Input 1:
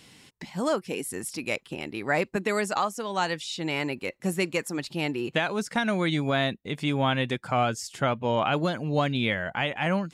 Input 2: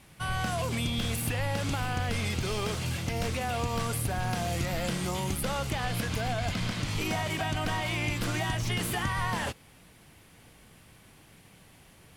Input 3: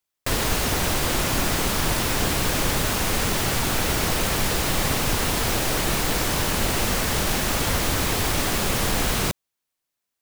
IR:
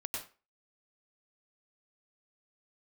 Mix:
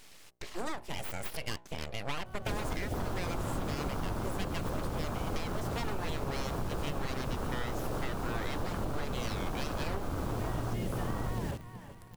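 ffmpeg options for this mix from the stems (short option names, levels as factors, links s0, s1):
-filter_complex "[0:a]bandreject=f=60:t=h:w=6,bandreject=f=120:t=h:w=6,bandreject=f=180:t=h:w=6,bandreject=f=240:t=h:w=6,bandreject=f=300:t=h:w=6,bandreject=f=360:t=h:w=6,bandreject=f=420:t=h:w=6,bandreject=f=480:t=h:w=6,bandreject=f=540:t=h:w=6,aeval=exprs='abs(val(0))':c=same,volume=1.06,asplit=2[s0][s1];[1:a]tiltshelf=f=890:g=7.5,acrusher=bits=8:dc=4:mix=0:aa=0.000001,adelay=2050,volume=0.841,asplit=2[s2][s3];[s3]volume=0.106[s4];[2:a]afwtdn=0.0708,adelay=2200,volume=0.944,asplit=2[s5][s6];[s6]volume=0.126[s7];[s1]apad=whole_len=626974[s8];[s2][s8]sidechaincompress=threshold=0.0141:ratio=6:attack=9.5:release=492[s9];[3:a]atrim=start_sample=2205[s10];[s7][s10]afir=irnorm=-1:irlink=0[s11];[s4]aecho=0:1:374|748|1122|1496|1870|2244:1|0.42|0.176|0.0741|0.0311|0.0131[s12];[s0][s9][s5][s11][s12]amix=inputs=5:normalize=0,acompressor=threshold=0.0282:ratio=6"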